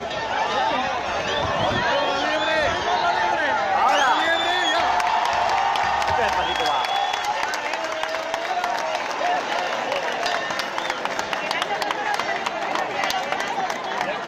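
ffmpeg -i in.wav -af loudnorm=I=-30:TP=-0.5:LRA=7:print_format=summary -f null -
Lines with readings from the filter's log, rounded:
Input Integrated:    -22.4 LUFS
Input True Peak:      -8.4 dBTP
Input LRA:             4.4 LU
Input Threshold:     -32.4 LUFS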